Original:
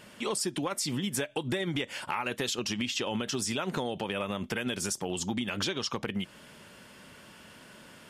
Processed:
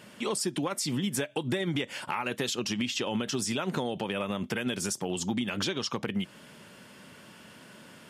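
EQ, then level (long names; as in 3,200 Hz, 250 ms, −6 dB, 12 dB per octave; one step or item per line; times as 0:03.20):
high-pass filter 130 Hz 12 dB per octave
low-shelf EQ 190 Hz +7 dB
0.0 dB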